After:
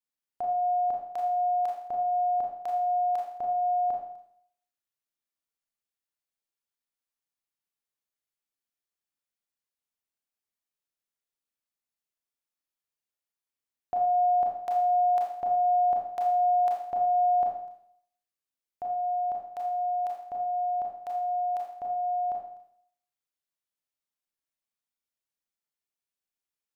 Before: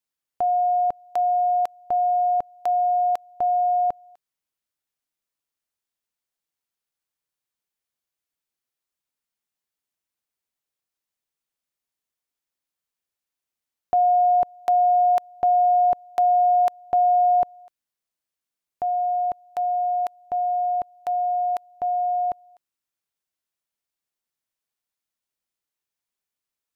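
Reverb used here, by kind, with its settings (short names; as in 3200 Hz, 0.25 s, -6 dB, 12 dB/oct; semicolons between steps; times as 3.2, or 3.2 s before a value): Schroeder reverb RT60 0.67 s, combs from 27 ms, DRR -1 dB; gain -9.5 dB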